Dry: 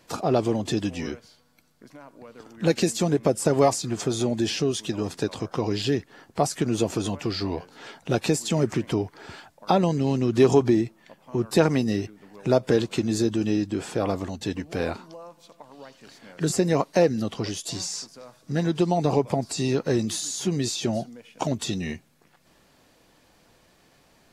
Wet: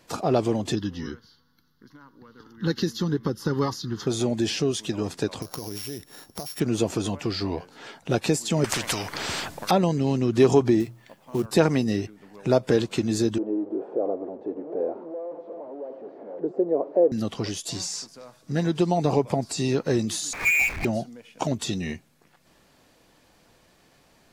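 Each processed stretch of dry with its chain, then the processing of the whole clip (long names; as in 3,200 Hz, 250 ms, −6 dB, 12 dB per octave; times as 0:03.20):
0:00.75–0:04.07: parametric band 8,900 Hz −5.5 dB 0.71 octaves + phaser with its sweep stopped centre 2,400 Hz, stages 6
0:05.42–0:06.60: samples sorted by size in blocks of 8 samples + high-shelf EQ 5,500 Hz +11 dB + downward compressor 16 to 1, threshold −29 dBFS
0:08.64–0:09.71: low-shelf EQ 200 Hz +10 dB + every bin compressed towards the loudest bin 4 to 1
0:10.80–0:11.46: log-companded quantiser 6 bits + mains-hum notches 60/120/180 Hz
0:13.38–0:17.12: converter with a step at zero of −27.5 dBFS + flat-topped band-pass 460 Hz, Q 1.4
0:20.33–0:20.85: voice inversion scrambler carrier 2,600 Hz + power curve on the samples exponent 0.5
whole clip: no processing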